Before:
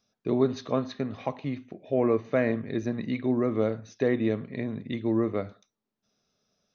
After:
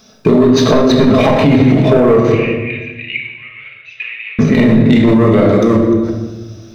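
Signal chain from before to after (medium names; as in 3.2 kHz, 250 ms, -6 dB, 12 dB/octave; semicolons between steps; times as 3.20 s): chunks repeated in reverse 321 ms, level -13 dB; waveshaping leveller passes 1; compression 6:1, threshold -30 dBFS, peak gain reduction 13 dB; saturation -25 dBFS, distortion -19 dB; 2.32–4.39 s: Butterworth band-pass 2.5 kHz, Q 4.4; simulated room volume 670 m³, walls mixed, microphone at 1.5 m; loudness maximiser +30.5 dB; trim -1 dB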